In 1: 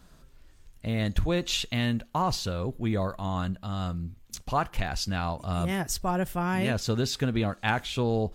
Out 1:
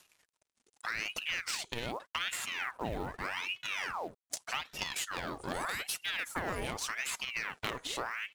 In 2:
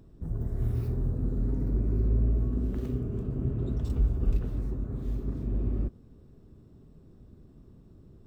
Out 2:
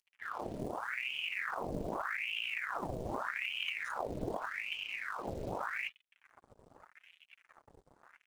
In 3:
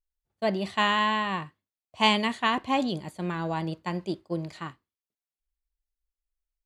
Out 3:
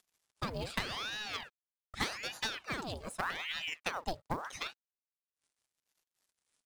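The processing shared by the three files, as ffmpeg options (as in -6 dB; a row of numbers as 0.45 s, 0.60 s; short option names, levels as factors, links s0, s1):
-af "acompressor=mode=upward:threshold=0.00891:ratio=2.5,aemphasis=mode=production:type=bsi,bandreject=f=1600:w=28,adynamicequalizer=threshold=0.00708:dfrequency=250:dqfactor=0.88:tfrequency=250:tqfactor=0.88:attack=5:release=100:ratio=0.375:range=2:mode=boostabove:tftype=bell,afftdn=nr=12:nf=-45,acrusher=bits=8:mix=0:aa=0.5,aresample=22050,aresample=44100,acompressor=threshold=0.02:ratio=16,aecho=1:1:5.5:0.4,acrusher=bits=7:mode=log:mix=0:aa=0.000001,aeval=exprs='0.112*(cos(1*acos(clip(val(0)/0.112,-1,1)))-cos(1*PI/2))+0.0251*(cos(2*acos(clip(val(0)/0.112,-1,1)))-cos(2*PI/2))+0.00282*(cos(4*acos(clip(val(0)/0.112,-1,1)))-cos(4*PI/2))+0.0158*(cos(6*acos(clip(val(0)/0.112,-1,1)))-cos(6*PI/2))+0.02*(cos(8*acos(clip(val(0)/0.112,-1,1)))-cos(8*PI/2))':c=same,aeval=exprs='val(0)*sin(2*PI*1500*n/s+1500*0.85/0.83*sin(2*PI*0.83*n/s))':c=same,volume=1.33"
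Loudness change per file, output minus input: -7.0 LU, -7.0 LU, -11.0 LU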